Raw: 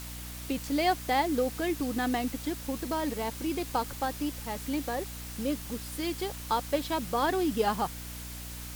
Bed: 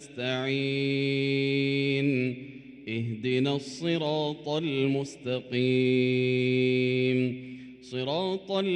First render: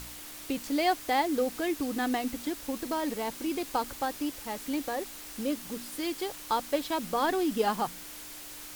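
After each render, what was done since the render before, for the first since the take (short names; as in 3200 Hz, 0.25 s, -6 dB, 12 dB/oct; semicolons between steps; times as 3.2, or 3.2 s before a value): de-hum 60 Hz, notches 4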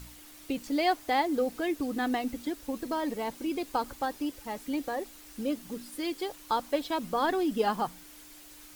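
denoiser 8 dB, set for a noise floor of -44 dBFS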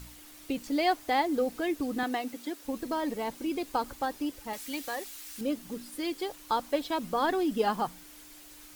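2.03–2.65 Bessel high-pass 310 Hz; 4.53–5.41 tilt shelf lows -7.5 dB, about 1100 Hz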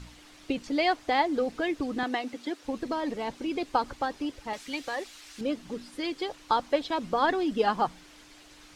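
LPF 5300 Hz 12 dB/oct; harmonic-percussive split percussive +5 dB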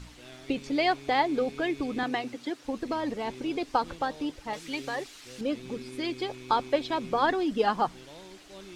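add bed -19.5 dB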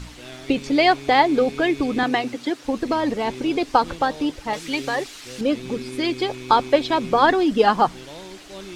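gain +9 dB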